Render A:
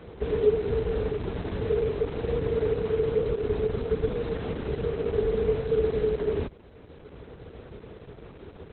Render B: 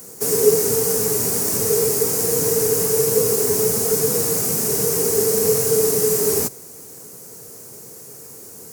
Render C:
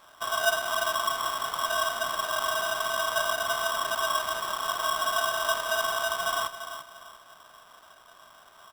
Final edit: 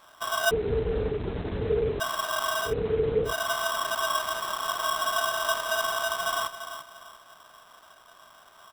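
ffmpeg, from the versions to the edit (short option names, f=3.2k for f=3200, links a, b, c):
-filter_complex "[0:a]asplit=2[a][b];[2:a]asplit=3[c][d][e];[c]atrim=end=0.512[f];[a]atrim=start=0.508:end=2.002[g];[d]atrim=start=1.998:end=2.74[h];[b]atrim=start=2.64:end=3.34[i];[e]atrim=start=3.24[j];[f][g]acrossfade=d=0.004:c1=hsin:c2=hsin[k];[k][h]acrossfade=d=0.004:c1=hsin:c2=hsin[l];[l][i]acrossfade=d=0.1:c1=tri:c2=tri[m];[m][j]acrossfade=d=0.1:c1=tri:c2=tri"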